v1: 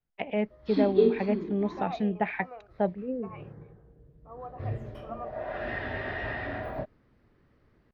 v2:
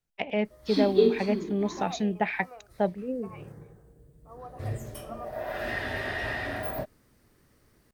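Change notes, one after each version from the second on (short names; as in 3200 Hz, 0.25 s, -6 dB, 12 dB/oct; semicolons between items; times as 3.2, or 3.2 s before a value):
second voice -3.5 dB; master: remove air absorption 320 m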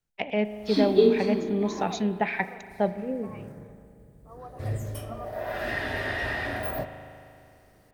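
reverb: on, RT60 2.5 s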